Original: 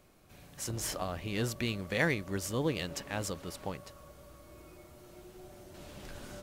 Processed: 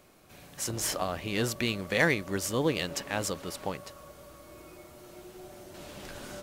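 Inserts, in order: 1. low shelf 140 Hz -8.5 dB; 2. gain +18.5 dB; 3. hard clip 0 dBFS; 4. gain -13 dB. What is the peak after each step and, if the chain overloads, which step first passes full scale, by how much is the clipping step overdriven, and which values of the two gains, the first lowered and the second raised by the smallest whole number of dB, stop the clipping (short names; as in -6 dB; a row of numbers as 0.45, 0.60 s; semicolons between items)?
-14.5, +4.0, 0.0, -13.0 dBFS; step 2, 4.0 dB; step 2 +14.5 dB, step 4 -9 dB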